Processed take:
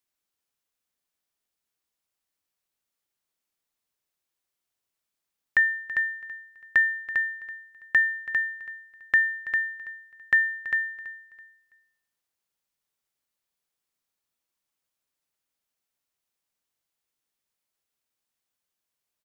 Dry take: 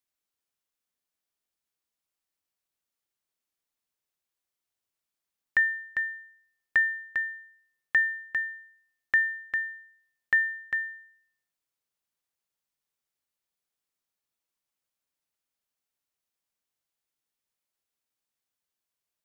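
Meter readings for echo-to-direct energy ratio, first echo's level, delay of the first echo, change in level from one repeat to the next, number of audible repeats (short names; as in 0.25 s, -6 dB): -16.0 dB, -16.5 dB, 0.33 s, -10.0 dB, 2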